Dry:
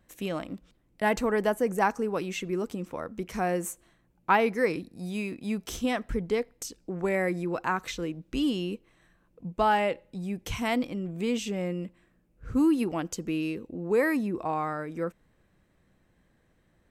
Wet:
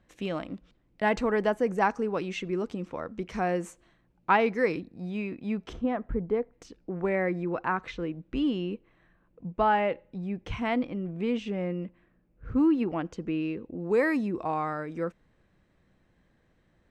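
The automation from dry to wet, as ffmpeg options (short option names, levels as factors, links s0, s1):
-af "asetnsamples=n=441:p=0,asendcmd='4.8 lowpass f 2600;5.73 lowpass f 1200;6.53 lowpass f 2500;13.8 lowpass f 6100',lowpass=4700"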